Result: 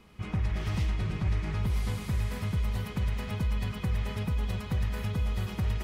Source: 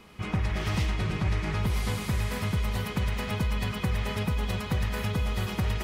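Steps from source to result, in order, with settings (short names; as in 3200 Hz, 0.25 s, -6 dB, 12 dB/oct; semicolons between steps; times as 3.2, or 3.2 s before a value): low shelf 180 Hz +7.5 dB; gain -7 dB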